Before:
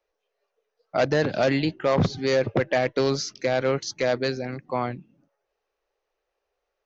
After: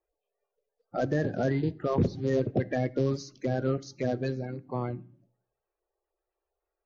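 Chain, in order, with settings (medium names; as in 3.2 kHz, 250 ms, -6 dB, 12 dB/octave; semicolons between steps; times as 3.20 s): coarse spectral quantiser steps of 30 dB; tilt shelf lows +6.5 dB, about 720 Hz; reverberation RT60 0.50 s, pre-delay 4 ms, DRR 16 dB; trim -7.5 dB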